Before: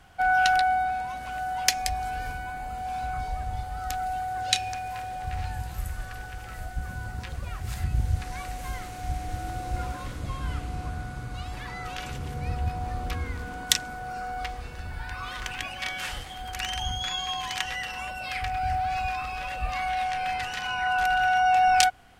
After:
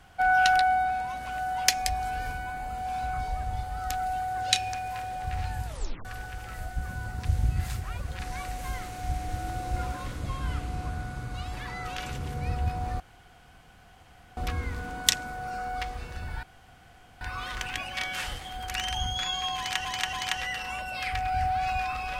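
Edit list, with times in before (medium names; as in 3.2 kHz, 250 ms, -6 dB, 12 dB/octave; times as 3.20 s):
5.66 s: tape stop 0.39 s
7.25–8.19 s: reverse
13.00 s: insert room tone 1.37 s
15.06 s: insert room tone 0.78 s
17.42–17.70 s: loop, 3 plays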